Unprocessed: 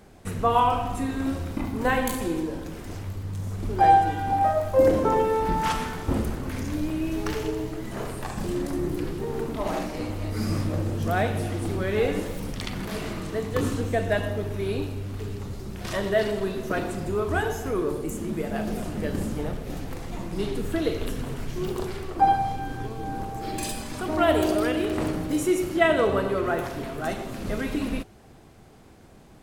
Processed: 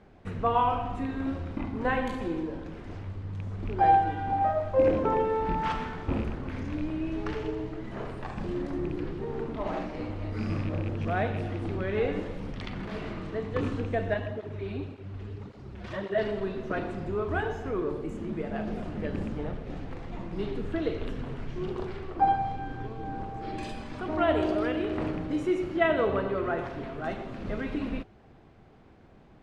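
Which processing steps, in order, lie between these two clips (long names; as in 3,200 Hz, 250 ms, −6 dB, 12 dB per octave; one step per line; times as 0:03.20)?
loose part that buzzes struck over −24 dBFS, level −27 dBFS
low-pass filter 3,000 Hz 12 dB per octave
0:14.14–0:16.18: through-zero flanger with one copy inverted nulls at 1.8 Hz, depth 7.8 ms
level −4 dB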